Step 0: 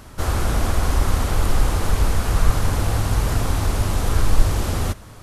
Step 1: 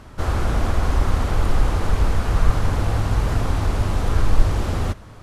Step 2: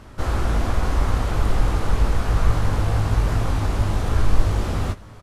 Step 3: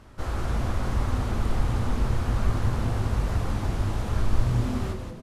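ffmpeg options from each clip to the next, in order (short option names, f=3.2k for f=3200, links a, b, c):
-af "aemphasis=mode=reproduction:type=50kf"
-filter_complex "[0:a]asplit=2[a][b];[b]adelay=19,volume=-7dB[c];[a][c]amix=inputs=2:normalize=0,volume=-1.5dB"
-filter_complex "[0:a]asplit=6[a][b][c][d][e][f];[b]adelay=177,afreqshift=-130,volume=-6dB[g];[c]adelay=354,afreqshift=-260,volume=-14.2dB[h];[d]adelay=531,afreqshift=-390,volume=-22.4dB[i];[e]adelay=708,afreqshift=-520,volume=-30.5dB[j];[f]adelay=885,afreqshift=-650,volume=-38.7dB[k];[a][g][h][i][j][k]amix=inputs=6:normalize=0,volume=-7dB"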